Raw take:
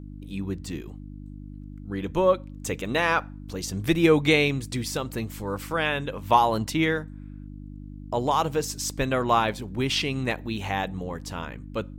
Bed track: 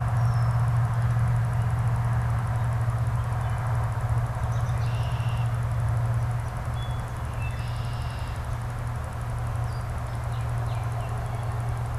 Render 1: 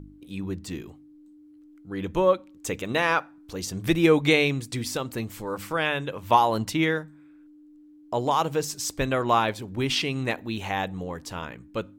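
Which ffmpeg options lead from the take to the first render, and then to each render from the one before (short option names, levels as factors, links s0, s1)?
-af "bandreject=f=50:t=h:w=4,bandreject=f=100:t=h:w=4,bandreject=f=150:t=h:w=4,bandreject=f=200:t=h:w=4,bandreject=f=250:t=h:w=4"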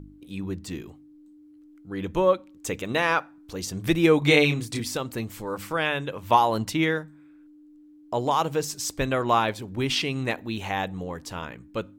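-filter_complex "[0:a]asettb=1/sr,asplit=3[s0][s1][s2];[s0]atrim=end=4.194[s3];[s1]atrim=start=4.19:end=4.8,asetpts=PTS-STARTPTS,afade=t=in:d=0.004:c=qsin,afade=t=out:st=0.606:d=0.004:c=qsin,asplit=2[s4][s5];[s5]adelay=27,volume=0.708[s6];[s4][s6]amix=inputs=2:normalize=0,atrim=end_sample=26901[s7];[s2]atrim=start=4.796[s8];[s3][s7]acrossfade=d=0.004:c1=hsin:c2=qsin[s9];[s9][s8]acrossfade=d=0.004:c1=qsin:c2=hsin"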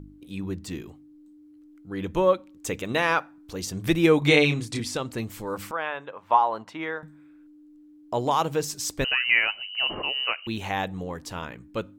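-filter_complex "[0:a]asettb=1/sr,asplit=3[s0][s1][s2];[s0]atrim=end=4.284[s3];[s1]atrim=start=4.28:end=5.19,asetpts=PTS-STARTPTS,afade=t=in:d=0.004:c=qsin,afade=t=out:st=0.906:d=0.004:c=qsin,lowpass=9900[s4];[s2]atrim=start=5.186[s5];[s3][s4]acrossfade=d=0.004:c1=hsin:c2=qsin[s6];[s6][s5]acrossfade=d=0.004:c1=qsin:c2=hsin,asettb=1/sr,asplit=3[s7][s8][s9];[s7]atrim=end=5.714[s10];[s8]atrim=start=5.71:end=7.03,asetpts=PTS-STARTPTS,afade=t=in:d=0.004:c=qsin,afade=t=out:st=1.316:d=0.004:c=qsin,bandpass=f=980:t=q:w=1.2[s11];[s9]atrim=start=7.026[s12];[s10][s11]acrossfade=d=0.004:c1=hsin:c2=qsin[s13];[s13][s12]acrossfade=d=0.004:c1=qsin:c2=hsin,asettb=1/sr,asplit=3[s14][s15][s16];[s14]atrim=end=9.044[s17];[s15]atrim=start=9.04:end=10.47,asetpts=PTS-STARTPTS,afade=t=in:d=0.004:c=qsin,afade=t=out:st=1.426:d=0.004:c=qsin,lowpass=f=2600:t=q:w=0.5098,lowpass=f=2600:t=q:w=0.6013,lowpass=f=2600:t=q:w=0.9,lowpass=f=2600:t=q:w=2.563,afreqshift=-3100[s18];[s16]atrim=start=10.466[s19];[s17][s18]acrossfade=d=0.004:c1=hsin:c2=qsin[s20];[s20][s19]acrossfade=d=0.004:c1=qsin:c2=hsin"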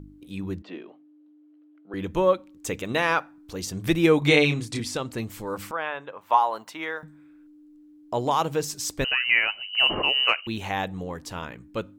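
-filter_complex "[0:a]asettb=1/sr,asplit=3[s0][s1][s2];[s0]atrim=end=0.624[s3];[s1]atrim=start=0.62:end=1.94,asetpts=PTS-STARTPTS,afade=t=in:d=0.004:c=qsin,afade=t=out:st=1.316:d=0.004:c=qsin,highpass=f=250:w=0.5412,highpass=f=250:w=1.3066,equalizer=f=280:t=q:w=4:g=-4,equalizer=f=620:t=q:w=4:g=9,equalizer=f=2100:t=q:w=4:g=-3,lowpass=f=3300:w=0.5412,lowpass=f=3300:w=1.3066[s4];[s2]atrim=start=1.936[s5];[s3][s4]acrossfade=d=0.004:c1=hsin:c2=qsin[s6];[s6][s5]acrossfade=d=0.004:c1=qsin:c2=hsin,asettb=1/sr,asplit=3[s7][s8][s9];[s7]atrim=end=6.214[s10];[s8]atrim=start=6.21:end=7.03,asetpts=PTS-STARTPTS,afade=t=in:d=0.004:c=qsin,afade=t=out:st=0.816:d=0.004:c=qsin,aemphasis=mode=production:type=bsi[s11];[s9]atrim=start=7.026[s12];[s10][s11]acrossfade=d=0.004:c1=hsin:c2=qsin[s13];[s13][s12]acrossfade=d=0.004:c1=qsin:c2=hsin,asettb=1/sr,asplit=3[s14][s15][s16];[s14]atrim=end=9.734[s17];[s15]atrim=start=9.73:end=10.41,asetpts=PTS-STARTPTS,afade=t=in:d=0.004:c=qsin,afade=t=out:st=0.676:d=0.004:c=qsin,acontrast=45[s18];[s16]atrim=start=10.406[s19];[s17][s18]acrossfade=d=0.004:c1=hsin:c2=qsin[s20];[s20][s19]acrossfade=d=0.004:c1=qsin:c2=hsin"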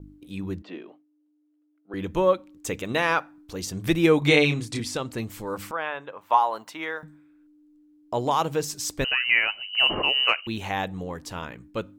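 -af "agate=range=0.0224:threshold=0.00447:ratio=3:detection=peak"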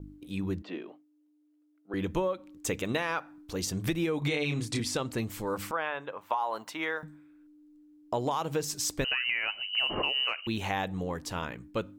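-af "alimiter=limit=0.2:level=0:latency=1:release=154,acompressor=threshold=0.0501:ratio=6"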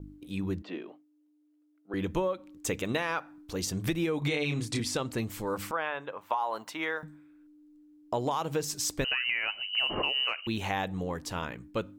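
-af anull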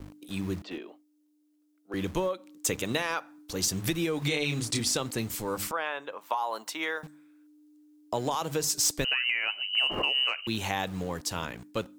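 -filter_complex "[0:a]acrossover=split=180|3900[s0][s1][s2];[s0]acrusher=bits=7:mix=0:aa=0.000001[s3];[s2]aeval=exprs='0.1*sin(PI/2*1.78*val(0)/0.1)':c=same[s4];[s3][s1][s4]amix=inputs=3:normalize=0"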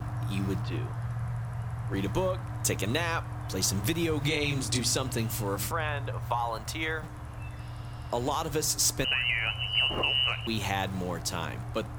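-filter_complex "[1:a]volume=0.316[s0];[0:a][s0]amix=inputs=2:normalize=0"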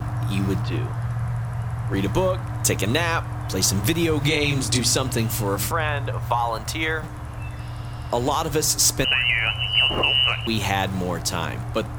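-af "volume=2.37"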